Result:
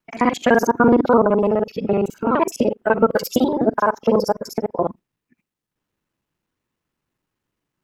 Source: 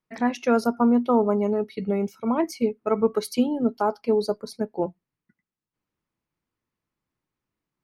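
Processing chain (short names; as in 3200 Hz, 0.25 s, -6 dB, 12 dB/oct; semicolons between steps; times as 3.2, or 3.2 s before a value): local time reversal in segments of 42 ms; formant shift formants +3 st; gain +6 dB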